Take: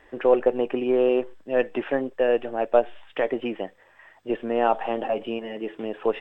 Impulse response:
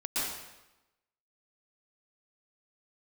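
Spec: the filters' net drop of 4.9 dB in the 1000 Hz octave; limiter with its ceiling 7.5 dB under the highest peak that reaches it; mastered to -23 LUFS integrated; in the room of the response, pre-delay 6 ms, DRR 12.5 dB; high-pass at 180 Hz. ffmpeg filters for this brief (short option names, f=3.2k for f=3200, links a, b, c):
-filter_complex "[0:a]highpass=180,equalizer=f=1k:t=o:g=-7.5,alimiter=limit=-16dB:level=0:latency=1,asplit=2[a][b];[1:a]atrim=start_sample=2205,adelay=6[c];[b][c]afir=irnorm=-1:irlink=0,volume=-19.5dB[d];[a][d]amix=inputs=2:normalize=0,volume=6dB"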